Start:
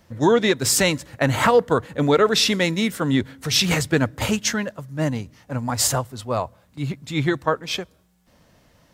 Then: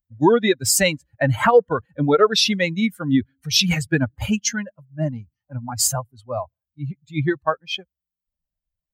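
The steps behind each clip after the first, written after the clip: expander on every frequency bin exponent 2; trim +4.5 dB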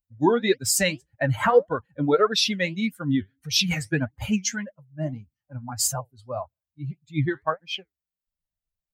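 flange 1.7 Hz, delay 3.1 ms, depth 8 ms, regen +64%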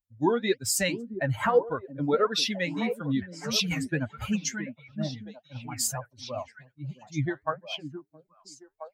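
repeats whose band climbs or falls 668 ms, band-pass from 250 Hz, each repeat 1.4 oct, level -6 dB; trim -4.5 dB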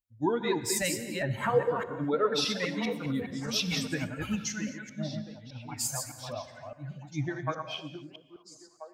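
chunks repeated in reverse 204 ms, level -5 dB; gated-style reverb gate 280 ms flat, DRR 10.5 dB; trim -4 dB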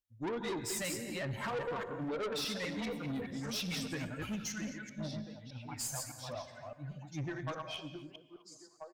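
valve stage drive 31 dB, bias 0.25; speakerphone echo 260 ms, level -19 dB; trim -2.5 dB

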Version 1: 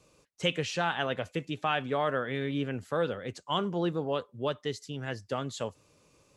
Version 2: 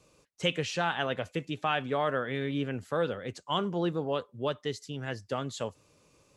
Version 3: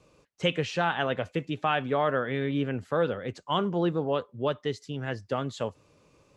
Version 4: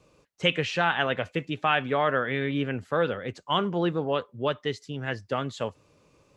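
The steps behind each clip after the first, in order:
no audible change
low-pass 2.9 kHz 6 dB/octave; trim +3.5 dB
dynamic bell 2.2 kHz, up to +6 dB, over -43 dBFS, Q 0.8

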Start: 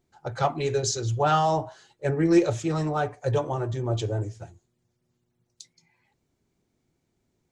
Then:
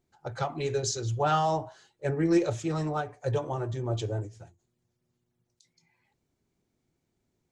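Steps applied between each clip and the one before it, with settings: endings held to a fixed fall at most 180 dB/s; trim -3.5 dB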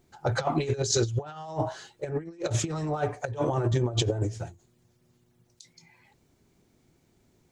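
compressor with a negative ratio -34 dBFS, ratio -0.5; trim +6.5 dB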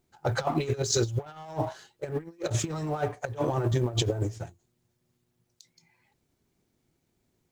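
companding laws mixed up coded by A

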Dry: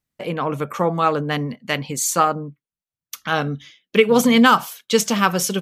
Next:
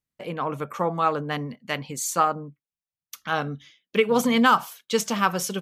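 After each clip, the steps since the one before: dynamic bell 1 kHz, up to +4 dB, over -30 dBFS, Q 0.98; trim -7 dB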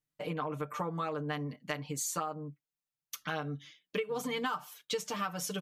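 comb 6.7 ms, depth 90%; compression 6:1, threshold -28 dBFS, peak gain reduction 17 dB; trim -4.5 dB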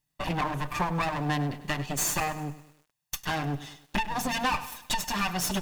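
comb filter that takes the minimum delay 1.1 ms; in parallel at -4 dB: saturation -33 dBFS, distortion -15 dB; on the sum: bit-crushed delay 101 ms, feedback 55%, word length 9-bit, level -15 dB; trim +6 dB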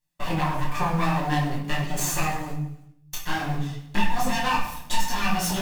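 in parallel at -8.5 dB: word length cut 6-bit, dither none; on the sum: simulated room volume 120 m³, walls mixed, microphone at 0.94 m; detune thickener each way 26 cents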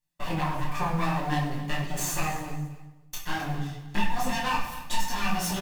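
feedback delay 264 ms, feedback 24%, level -16 dB; trim -3.5 dB

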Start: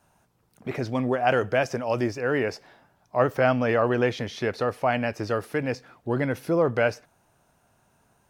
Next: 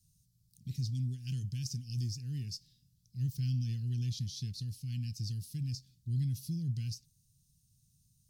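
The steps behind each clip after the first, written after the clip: elliptic band-stop 150–4500 Hz, stop band 70 dB; peaking EQ 2.2 kHz -5 dB 0.27 oct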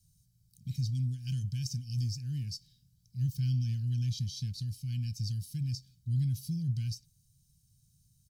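comb 1.3 ms, depth 59%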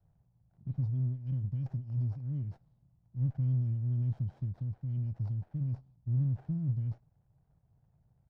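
dead-time distortion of 0.056 ms; resonant low-pass 760 Hz, resonance Q 3.4; sliding maximum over 17 samples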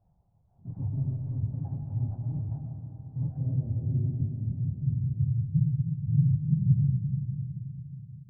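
phase randomisation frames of 50 ms; low-pass sweep 840 Hz -> 160 Hz, 3.20–4.73 s; algorithmic reverb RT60 4 s, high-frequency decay 0.5×, pre-delay 75 ms, DRR 3 dB

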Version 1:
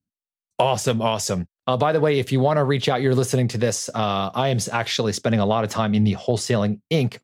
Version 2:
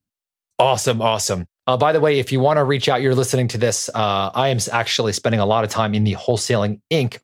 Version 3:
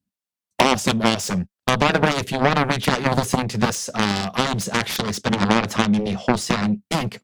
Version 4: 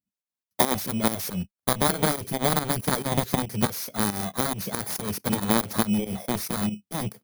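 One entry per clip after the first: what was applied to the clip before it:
peaking EQ 190 Hz -6 dB 1.3 oct; trim +4.5 dB
Chebyshev shaper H 7 -11 dB, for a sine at -1 dBFS; peaking EQ 200 Hz +12 dB 0.51 oct; trim -2 dB
bit-reversed sample order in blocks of 16 samples; volume shaper 139 bpm, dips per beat 2, -13 dB, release 170 ms; trim -4 dB

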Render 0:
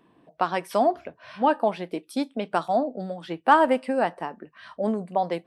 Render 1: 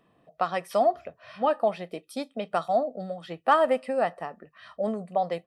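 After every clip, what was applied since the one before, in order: comb 1.6 ms, depth 51%; trim -3.5 dB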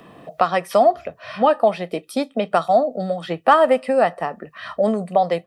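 three bands compressed up and down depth 40%; trim +8.5 dB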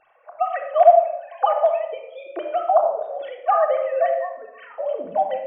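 formants replaced by sine waves; simulated room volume 3100 m³, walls furnished, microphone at 3.5 m; trim -4.5 dB

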